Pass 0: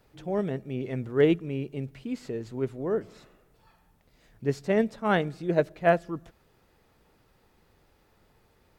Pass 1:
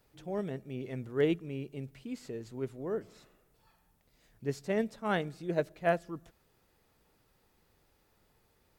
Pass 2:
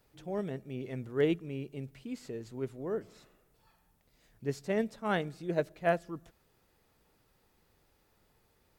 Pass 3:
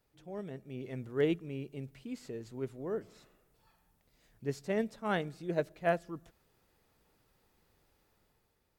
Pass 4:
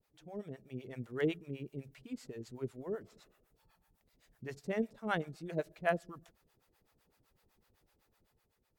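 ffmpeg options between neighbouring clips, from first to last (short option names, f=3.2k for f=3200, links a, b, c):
-af "highshelf=f=5.1k:g=8,volume=-7dB"
-af anull
-af "dynaudnorm=f=120:g=11:m=6dB,volume=-7.5dB"
-filter_complex "[0:a]acrossover=split=560[a][b];[a]aeval=exprs='val(0)*(1-1/2+1/2*cos(2*PI*7.9*n/s))':c=same[c];[b]aeval=exprs='val(0)*(1-1/2-1/2*cos(2*PI*7.9*n/s))':c=same[d];[c][d]amix=inputs=2:normalize=0,volume=2dB"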